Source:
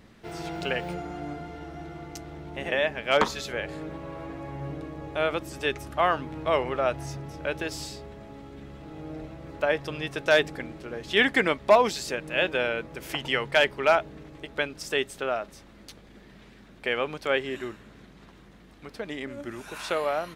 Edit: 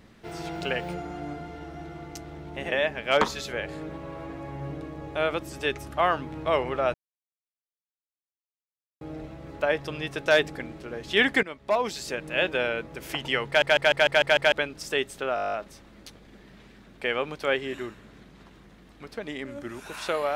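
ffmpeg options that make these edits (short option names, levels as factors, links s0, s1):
-filter_complex "[0:a]asplit=20[s0][s1][s2][s3][s4][s5][s6][s7][s8][s9][s10][s11][s12][s13][s14][s15][s16][s17][s18][s19];[s0]atrim=end=6.94,asetpts=PTS-STARTPTS,afade=t=out:st=6.936:d=0.004:c=hsin[s20];[s1]atrim=start=6.94:end=9.01,asetpts=PTS-STARTPTS,volume=0[s21];[s2]atrim=start=9.01:end=11.43,asetpts=PTS-STARTPTS,afade=t=in:d=0.004:c=hsin,afade=t=out:st=2.416:d=0.004:c=hsin:silence=0.133352[s22];[s3]atrim=start=11.43:end=13.622,asetpts=PTS-STARTPTS,afade=t=in:d=0.8:silence=0.133352[s23];[s4]atrim=start=13.468:end=13.622[s24];[s5]atrim=start=13.468:end=13.622[s25];[s6]atrim=start=13.468:end=13.622[s26];[s7]atrim=start=13.468:end=13.622[s27];[s8]atrim=start=13.468:end=13.622[s28];[s9]atrim=start=13.468:end=13.622[s29];[s10]atrim=start=14.518:end=15.372[s30];[s11]atrim=start=15.348:end=15.372[s31];[s12]atrim=start=15.348:end=15.372[s32];[s13]atrim=start=15.348:end=15.372[s33];[s14]atrim=start=15.348:end=15.372[s34];[s15]atrim=start=15.348:end=15.372[s35];[s16]atrim=start=15.348:end=15.372[s36];[s17]atrim=start=15.348:end=15.372[s37];[s18]atrim=start=15.348:end=15.372[s38];[s19]atrim=start=15.348[s39];[s20][s21][s22][s23]concat=n=4:v=0:a=1[s40];[s40][s24]acrossfade=d=0.004:c1=hsin:c2=hsin[s41];[s41][s25]acrossfade=d=0.004:c1=hsin:c2=hsin[s42];[s42][s26]acrossfade=d=0.004:c1=hsin:c2=hsin[s43];[s43][s27]acrossfade=d=0.004:c1=hsin:c2=hsin[s44];[s44][s28]acrossfade=d=0.004:c1=hsin:c2=hsin[s45];[s45][s29]acrossfade=d=0.004:c1=hsin:c2=hsin[s46];[s46][s30]acrossfade=d=0.004:c1=hsin:c2=hsin[s47];[s47][s31]acrossfade=d=0.004:c1=hsin:c2=hsin[s48];[s48][s32]acrossfade=d=0.004:c1=hsin:c2=hsin[s49];[s49][s33]acrossfade=d=0.004:c1=hsin:c2=hsin[s50];[s50][s34]acrossfade=d=0.004:c1=hsin:c2=hsin[s51];[s51][s35]acrossfade=d=0.004:c1=hsin:c2=hsin[s52];[s52][s36]acrossfade=d=0.004:c1=hsin:c2=hsin[s53];[s53][s37]acrossfade=d=0.004:c1=hsin:c2=hsin[s54];[s54][s38]acrossfade=d=0.004:c1=hsin:c2=hsin[s55];[s55][s39]acrossfade=d=0.004:c1=hsin:c2=hsin"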